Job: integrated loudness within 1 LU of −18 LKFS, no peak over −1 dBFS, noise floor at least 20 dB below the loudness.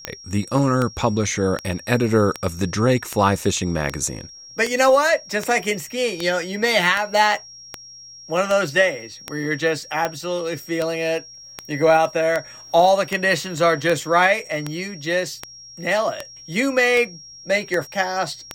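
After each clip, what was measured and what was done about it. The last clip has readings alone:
number of clicks 25; interfering tone 5,600 Hz; level of the tone −39 dBFS; integrated loudness −20.5 LKFS; sample peak −2.5 dBFS; target loudness −18.0 LKFS
→ click removal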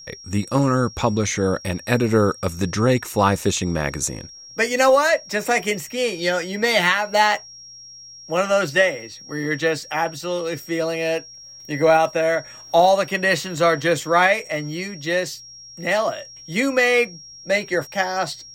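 number of clicks 0; interfering tone 5,600 Hz; level of the tone −39 dBFS
→ notch filter 5,600 Hz, Q 30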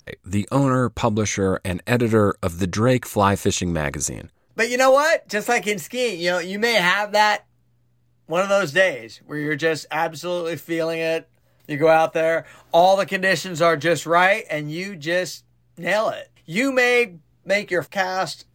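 interfering tone none found; integrated loudness −20.5 LKFS; sample peak −2.5 dBFS; target loudness −18.0 LKFS
→ level +2.5 dB
brickwall limiter −1 dBFS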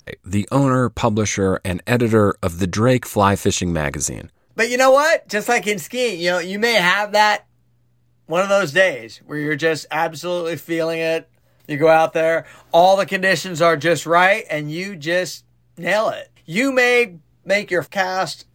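integrated loudness −18.0 LKFS; sample peak −1.0 dBFS; background noise floor −59 dBFS

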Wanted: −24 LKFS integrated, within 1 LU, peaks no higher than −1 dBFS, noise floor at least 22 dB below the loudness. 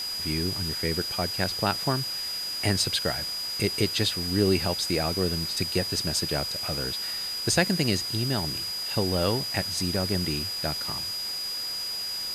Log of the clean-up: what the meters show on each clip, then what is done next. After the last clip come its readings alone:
interfering tone 4,900 Hz; level of the tone −30 dBFS; background noise floor −32 dBFS; target noise floor −49 dBFS; integrated loudness −26.5 LKFS; sample peak −7.5 dBFS; target loudness −24.0 LKFS
→ notch filter 4,900 Hz, Q 30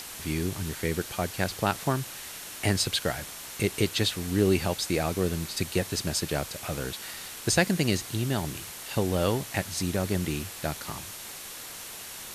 interfering tone none found; background noise floor −41 dBFS; target noise floor −51 dBFS
→ noise reduction from a noise print 10 dB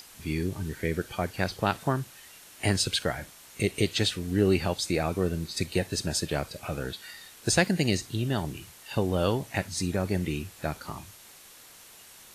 background noise floor −51 dBFS; integrated loudness −29.0 LKFS; sample peak −8.0 dBFS; target loudness −24.0 LKFS
→ level +5 dB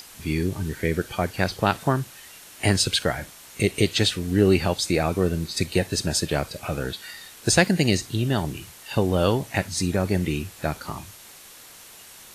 integrated loudness −24.0 LKFS; sample peak −3.0 dBFS; background noise floor −46 dBFS

